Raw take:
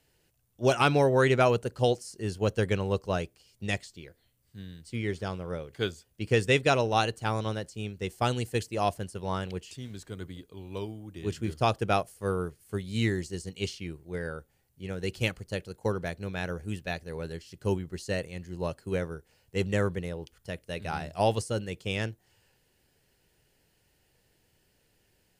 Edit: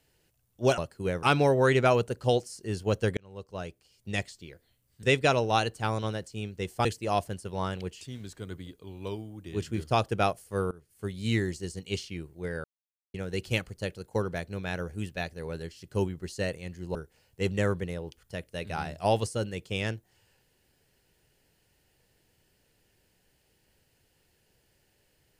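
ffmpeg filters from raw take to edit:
ffmpeg -i in.wav -filter_complex "[0:a]asplit=10[link_01][link_02][link_03][link_04][link_05][link_06][link_07][link_08][link_09][link_10];[link_01]atrim=end=0.782[link_11];[link_02]atrim=start=18.648:end=19.102[link_12];[link_03]atrim=start=0.778:end=2.72,asetpts=PTS-STARTPTS,afade=type=out:start_time=1.938:duration=0.004:curve=hsin[link_13];[link_04]atrim=start=2.72:end=4.582,asetpts=PTS-STARTPTS,afade=type=in:duration=1.06[link_14];[link_05]atrim=start=6.448:end=8.272[link_15];[link_06]atrim=start=8.548:end=12.41,asetpts=PTS-STARTPTS,afade=type=out:start_time=3.858:duration=0.004:curve=hsin:silence=0.0668344[link_16];[link_07]atrim=start=12.41:end=14.34,asetpts=PTS-STARTPTS,afade=type=in:duration=0.44:silence=0.0668344,afade=type=out:start_time=1.926:duration=0.004:curve=hsin[link_17];[link_08]atrim=start=14.34:end=14.84,asetpts=PTS-STARTPTS,volume=0[link_18];[link_09]atrim=start=14.84:end=18.652,asetpts=PTS-STARTPTS,afade=type=in:duration=0.004:curve=hsin[link_19];[link_10]atrim=start=19.098[link_20];[link_11][link_12]acrossfade=duration=0.004:curve1=hsin:curve2=hsin[link_21];[link_13][link_14]concat=n=2:v=0:a=1[link_22];[link_21][link_22]acrossfade=duration=0.004:curve1=hsin:curve2=hsin[link_23];[link_23][link_15]acrossfade=duration=0.004:curve1=hsin:curve2=hsin[link_24];[link_16][link_17][link_18][link_19]concat=n=4:v=0:a=1[link_25];[link_24][link_25]acrossfade=duration=0.004:curve1=hsin:curve2=hsin[link_26];[link_26][link_20]acrossfade=duration=0.004:curve1=hsin:curve2=hsin" out.wav

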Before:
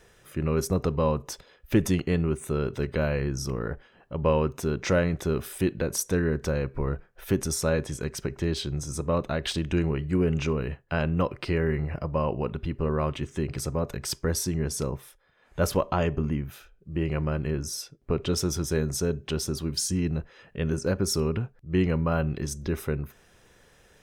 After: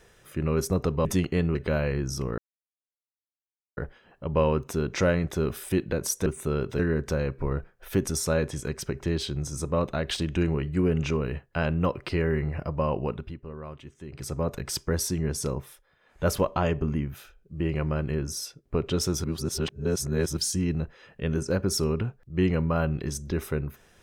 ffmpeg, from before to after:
ffmpeg -i in.wav -filter_complex "[0:a]asplit=10[link_01][link_02][link_03][link_04][link_05][link_06][link_07][link_08][link_09][link_10];[link_01]atrim=end=1.052[link_11];[link_02]atrim=start=1.798:end=2.302[link_12];[link_03]atrim=start=2.828:end=3.66,asetpts=PTS-STARTPTS,afade=type=out:start_time=0.828:duration=0.004:curve=hsin,apad=pad_dur=1.39[link_13];[link_04]atrim=start=3.66:end=6.152,asetpts=PTS-STARTPTS,afade=type=in:duration=0.004:curve=hsin[link_14];[link_05]atrim=start=2.298:end=2.832[link_15];[link_06]atrim=start=6.148:end=12.76,asetpts=PTS-STARTPTS,afade=type=out:start_time=6.272:duration=0.34:silence=0.223872[link_16];[link_07]atrim=start=12.76:end=13.43,asetpts=PTS-STARTPTS,volume=-13dB[link_17];[link_08]atrim=start=13.43:end=18.602,asetpts=PTS-STARTPTS,afade=type=in:duration=0.34:silence=0.223872[link_18];[link_09]atrim=start=18.598:end=19.732,asetpts=PTS-STARTPTS,areverse[link_19];[link_10]atrim=start=19.728[link_20];[link_11][link_12]acrossfade=duration=0.004:curve1=hsin:curve2=hsin[link_21];[link_13][link_14]concat=n=2:v=0:a=1[link_22];[link_21][link_22]acrossfade=duration=0.004:curve1=hsin:curve2=hsin[link_23];[link_23][link_15]acrossfade=duration=0.004:curve1=hsin:curve2=hsin[link_24];[link_16][link_17][link_18]concat=n=3:v=0:a=1[link_25];[link_24][link_25]acrossfade=duration=0.004:curve1=hsin:curve2=hsin[link_26];[link_26][link_19]acrossfade=duration=0.004:curve1=hsin:curve2=hsin[link_27];[link_27][link_20]acrossfade=duration=0.004:curve1=hsin:curve2=hsin" out.wav

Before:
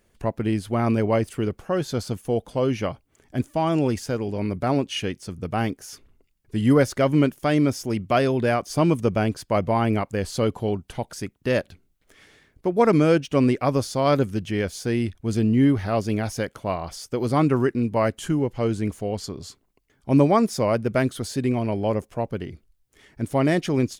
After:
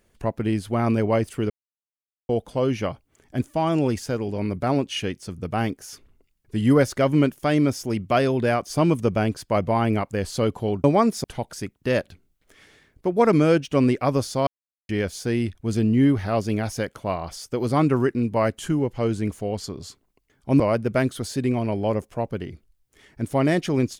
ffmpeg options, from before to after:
ffmpeg -i in.wav -filter_complex "[0:a]asplit=8[link_01][link_02][link_03][link_04][link_05][link_06][link_07][link_08];[link_01]atrim=end=1.5,asetpts=PTS-STARTPTS,afade=type=out:start_time=1.496:duration=0.004:curve=hsin[link_09];[link_02]atrim=start=1.5:end=2.29,asetpts=PTS-STARTPTS,volume=0[link_10];[link_03]atrim=start=2.29:end=10.842,asetpts=PTS-STARTPTS,afade=type=in:duration=0.004:curve=hsin[link_11];[link_04]atrim=start=20.198:end=20.602[link_12];[link_05]atrim=start=10.838:end=14.07,asetpts=PTS-STARTPTS,afade=type=out:start_time=3.228:duration=0.004:curve=hsin[link_13];[link_06]atrim=start=14.07:end=14.49,asetpts=PTS-STARTPTS,volume=0[link_14];[link_07]atrim=start=14.49:end=20.202,asetpts=PTS-STARTPTS,afade=type=in:duration=0.004:curve=hsin[link_15];[link_08]atrim=start=20.598[link_16];[link_09][link_10][link_11]concat=n=3:v=0:a=1[link_17];[link_17][link_12]acrossfade=duration=0.004:curve1=hsin:curve2=hsin[link_18];[link_13][link_14][link_15]concat=n=3:v=0:a=1[link_19];[link_18][link_19]acrossfade=duration=0.004:curve1=hsin:curve2=hsin[link_20];[link_20][link_16]acrossfade=duration=0.004:curve1=hsin:curve2=hsin" out.wav

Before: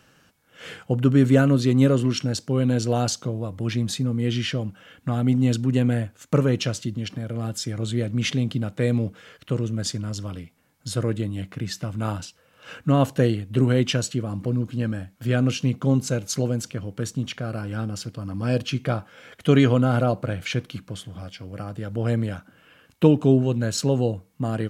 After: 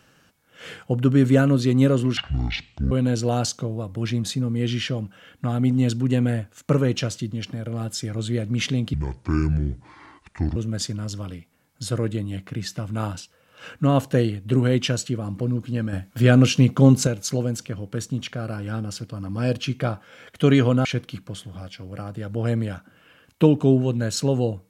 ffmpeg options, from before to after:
ffmpeg -i in.wav -filter_complex "[0:a]asplit=8[link_01][link_02][link_03][link_04][link_05][link_06][link_07][link_08];[link_01]atrim=end=2.174[link_09];[link_02]atrim=start=2.17:end=2.55,asetpts=PTS-STARTPTS,asetrate=22491,aresample=44100[link_10];[link_03]atrim=start=2.546:end=8.574[link_11];[link_04]atrim=start=8.57:end=9.61,asetpts=PTS-STARTPTS,asetrate=28224,aresample=44100,atrim=end_sample=71662,asetpts=PTS-STARTPTS[link_12];[link_05]atrim=start=9.606:end=14.982[link_13];[link_06]atrim=start=14.978:end=16.122,asetpts=PTS-STARTPTS,volume=6.5dB[link_14];[link_07]atrim=start=16.118:end=19.902[link_15];[link_08]atrim=start=20.458[link_16];[link_09][link_10]acrossfade=duration=0.004:curve1=hsin:curve2=hsin[link_17];[link_17][link_11]acrossfade=duration=0.004:curve1=hsin:curve2=hsin[link_18];[link_18][link_12]acrossfade=duration=0.004:curve1=hsin:curve2=hsin[link_19];[link_19][link_13]acrossfade=duration=0.004:curve1=hsin:curve2=hsin[link_20];[link_20][link_14]acrossfade=duration=0.004:curve1=hsin:curve2=hsin[link_21];[link_21][link_15]acrossfade=duration=0.004:curve1=hsin:curve2=hsin[link_22];[link_22][link_16]acrossfade=duration=0.004:curve1=hsin:curve2=hsin" out.wav

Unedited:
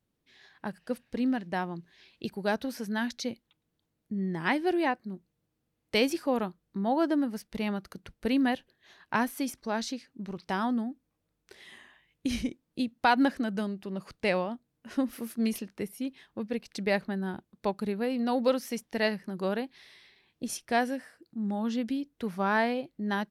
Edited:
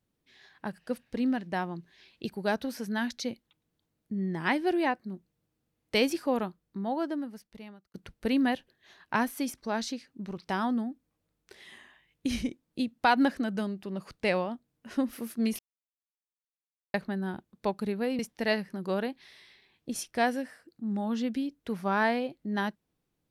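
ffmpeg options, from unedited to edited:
ffmpeg -i in.wav -filter_complex "[0:a]asplit=5[link_01][link_02][link_03][link_04][link_05];[link_01]atrim=end=7.94,asetpts=PTS-STARTPTS,afade=type=out:start_time=6.31:duration=1.63[link_06];[link_02]atrim=start=7.94:end=15.59,asetpts=PTS-STARTPTS,afade=type=in:duration=0.004:curve=hsin,afade=type=out:start_time=7.646:duration=0.004:curve=hsin[link_07];[link_03]atrim=start=15.59:end=16.94,asetpts=PTS-STARTPTS,volume=0[link_08];[link_04]atrim=start=16.94:end=18.192,asetpts=PTS-STARTPTS,afade=type=in:duration=0.004:curve=hsin[link_09];[link_05]atrim=start=18.728[link_10];[link_06][link_07][link_08][link_09]concat=n=4:v=0:a=1[link_11];[link_11][link_10]acrossfade=duration=0.004:curve1=hsin:curve2=hsin" out.wav

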